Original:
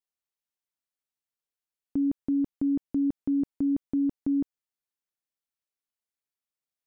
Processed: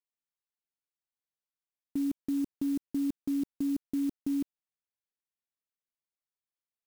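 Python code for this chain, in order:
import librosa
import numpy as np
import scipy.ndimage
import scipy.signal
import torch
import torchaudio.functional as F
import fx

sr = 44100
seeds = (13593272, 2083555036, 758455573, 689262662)

y = fx.level_steps(x, sr, step_db=9)
y = fx.clock_jitter(y, sr, seeds[0], jitter_ms=0.041)
y = F.gain(torch.from_numpy(y), -2.0).numpy()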